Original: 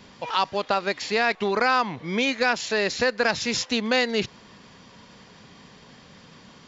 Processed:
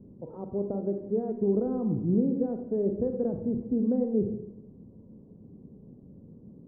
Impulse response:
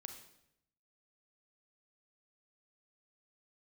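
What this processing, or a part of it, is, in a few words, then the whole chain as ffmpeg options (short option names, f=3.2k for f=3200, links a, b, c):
next room: -filter_complex "[0:a]asettb=1/sr,asplit=3[a][b][c];[a]atrim=end=1.664[d];[b]atrim=start=1.66:end=2.14,asetpts=PTS-STARTPTS,afade=t=in:d=0.004:c=qsin,afade=t=out:st=0.476:d=0.004:c=qsin,lowshelf=f=170:g=9.5[e];[c]atrim=start=2.136[f];[d][e]acrossfade=d=0.004:c1=hsin:c2=qsin[g];[g][f]acrossfade=d=0.004:c1=qsin:c2=hsin,lowpass=f=410:w=0.5412,lowpass=f=410:w=1.3066[h];[1:a]atrim=start_sample=2205[i];[h][i]afir=irnorm=-1:irlink=0,volume=7.5dB"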